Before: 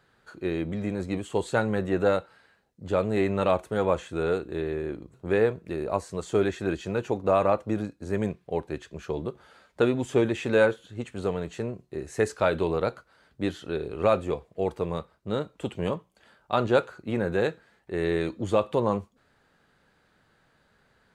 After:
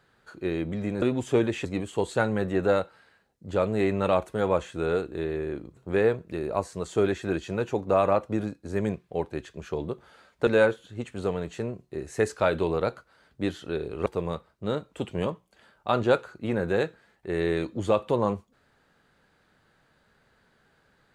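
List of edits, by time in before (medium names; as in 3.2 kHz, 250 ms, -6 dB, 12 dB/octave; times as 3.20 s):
9.84–10.47 s: move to 1.02 s
14.06–14.70 s: delete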